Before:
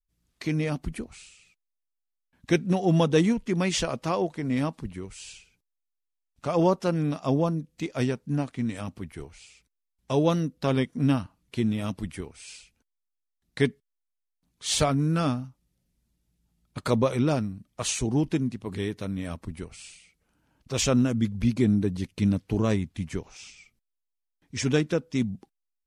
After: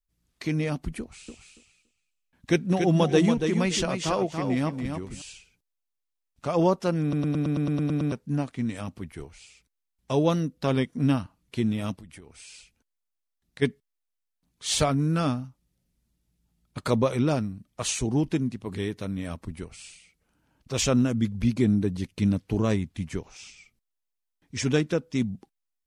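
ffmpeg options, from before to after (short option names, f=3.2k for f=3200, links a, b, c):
-filter_complex "[0:a]asettb=1/sr,asplit=3[a][b][c];[a]atrim=end=1.004[d];[b]atrim=start=1:end=5.22,asetpts=PTS-STARTPTS,afade=t=in:d=0.004:c=qsin,afade=t=out:st=4.216:d=0.004:c=qsin,aecho=1:1:283|566|849:0.501|0.0802|0.0128,atrim=end_sample=186102[e];[c]atrim=start=5.216[f];[d][e]acrossfade=d=0.004:c1=hsin:c2=qsin[g];[g][f]acrossfade=d=0.004:c1=qsin:c2=hsin,asplit=3[h][i][j];[h]afade=t=out:st=11.95:d=0.02[k];[i]acompressor=threshold=-42dB:ratio=10:attack=3.2:release=140:knee=1:detection=peak,afade=t=in:st=11.95:d=0.02,afade=t=out:st=13.61:d=0.02[l];[j]afade=t=in:st=13.61:d=0.02[m];[k][l][m]amix=inputs=3:normalize=0,asplit=11[n][o][p][q][r][s][t][u][v][w][x];[n]atrim=end=7.132[y];[o]atrim=start=7.018:end=7.132[z];[p]atrim=start=7.018:end=7.132[aa];[q]atrim=start=7.018:end=7.132[ab];[r]atrim=start=7.018:end=7.132[ac];[s]atrim=start=7.018:end=7.132[ad];[t]atrim=start=7.018:end=7.132[ae];[u]atrim=start=7.018:end=7.132[af];[v]atrim=start=7.018:end=7.132[ag];[w]atrim=start=7.018:end=7.132[ah];[x]atrim=start=8.118[ai];[y][z]acrossfade=d=0.004:c1=hsin:c2=hsin[aj];[aj][aa]acrossfade=d=0.004:c1=hsin:c2=hsin[ak];[ak][ab]acrossfade=d=0.004:c1=hsin:c2=hsin[al];[al][ac]acrossfade=d=0.004:c1=hsin:c2=hsin[am];[am][ad]acrossfade=d=0.004:c1=hsin:c2=hsin[an];[an][ae]acrossfade=d=0.004:c1=hsin:c2=hsin[ao];[ao][af]acrossfade=d=0.004:c1=hsin:c2=hsin[ap];[ap][ag]acrossfade=d=0.004:c1=hsin:c2=hsin[aq];[aq][ah]acrossfade=d=0.004:c1=hsin:c2=hsin[ar];[ar][ai]acrossfade=d=0.004:c1=hsin:c2=hsin"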